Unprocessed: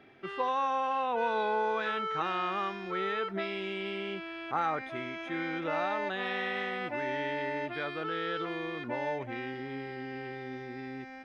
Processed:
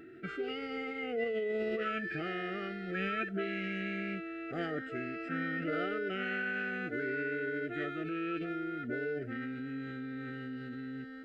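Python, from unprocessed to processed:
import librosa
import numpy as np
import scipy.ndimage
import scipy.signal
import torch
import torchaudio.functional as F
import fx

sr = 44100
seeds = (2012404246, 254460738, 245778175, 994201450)

y = x + 10.0 ** (-48.0 / 20.0) * np.sin(2.0 * np.pi * 450.0 * np.arange(len(x)) / sr)
y = scipy.signal.sosfilt(scipy.signal.ellip(3, 1.0, 50, [690.0, 1400.0], 'bandstop', fs=sr, output='sos'), y)
y = fx.formant_shift(y, sr, semitones=-4)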